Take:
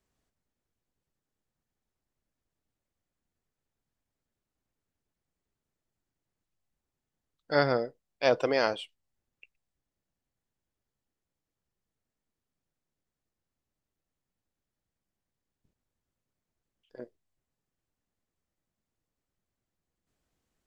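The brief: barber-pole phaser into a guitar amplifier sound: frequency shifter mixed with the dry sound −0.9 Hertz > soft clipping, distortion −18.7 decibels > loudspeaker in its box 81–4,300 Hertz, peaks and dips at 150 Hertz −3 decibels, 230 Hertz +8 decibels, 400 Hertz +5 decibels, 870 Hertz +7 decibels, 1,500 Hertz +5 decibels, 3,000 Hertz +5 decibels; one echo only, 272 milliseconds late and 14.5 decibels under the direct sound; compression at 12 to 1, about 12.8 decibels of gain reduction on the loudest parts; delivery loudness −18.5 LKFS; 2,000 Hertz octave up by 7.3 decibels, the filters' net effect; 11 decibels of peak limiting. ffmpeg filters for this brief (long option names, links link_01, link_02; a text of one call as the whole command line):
ffmpeg -i in.wav -filter_complex "[0:a]equalizer=frequency=2000:width_type=o:gain=5,acompressor=threshold=-30dB:ratio=12,alimiter=level_in=2.5dB:limit=-24dB:level=0:latency=1,volume=-2.5dB,aecho=1:1:272:0.188,asplit=2[link_01][link_02];[link_02]afreqshift=-0.9[link_03];[link_01][link_03]amix=inputs=2:normalize=1,asoftclip=threshold=-33.5dB,highpass=81,equalizer=frequency=150:width_type=q:width=4:gain=-3,equalizer=frequency=230:width_type=q:width=4:gain=8,equalizer=frequency=400:width_type=q:width=4:gain=5,equalizer=frequency=870:width_type=q:width=4:gain=7,equalizer=frequency=1500:width_type=q:width=4:gain=5,equalizer=frequency=3000:width_type=q:width=4:gain=5,lowpass=frequency=4300:width=0.5412,lowpass=frequency=4300:width=1.3066,volume=25.5dB" out.wav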